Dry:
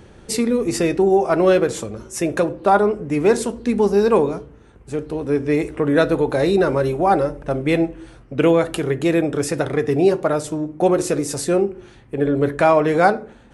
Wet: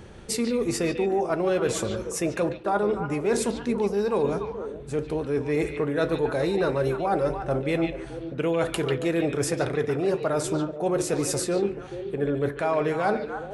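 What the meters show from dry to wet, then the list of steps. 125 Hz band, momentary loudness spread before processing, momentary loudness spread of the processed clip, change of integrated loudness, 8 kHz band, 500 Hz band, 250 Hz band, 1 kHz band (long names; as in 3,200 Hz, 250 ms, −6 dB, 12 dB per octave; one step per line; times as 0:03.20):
−5.5 dB, 9 LU, 5 LU, −7.5 dB, −2.5 dB, −7.0 dB, −7.5 dB, −8.5 dB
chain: parametric band 290 Hz −3.5 dB 0.32 octaves
reversed playback
downward compressor, threshold −22 dBFS, peak gain reduction 12.5 dB
reversed playback
echo through a band-pass that steps 144 ms, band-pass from 3,000 Hz, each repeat −1.4 octaves, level −3 dB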